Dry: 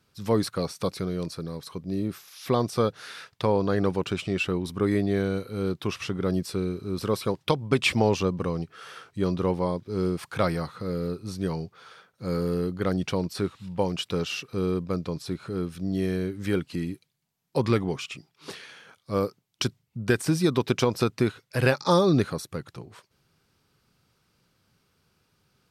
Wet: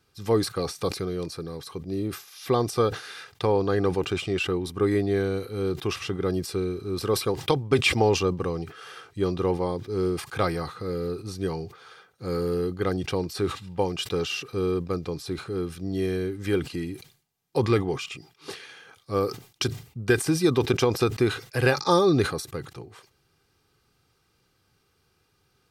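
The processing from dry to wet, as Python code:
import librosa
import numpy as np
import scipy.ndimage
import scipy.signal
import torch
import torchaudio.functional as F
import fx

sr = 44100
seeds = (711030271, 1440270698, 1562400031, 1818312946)

y = x + 0.43 * np.pad(x, (int(2.5 * sr / 1000.0), 0))[:len(x)]
y = fx.sustainer(y, sr, db_per_s=140.0)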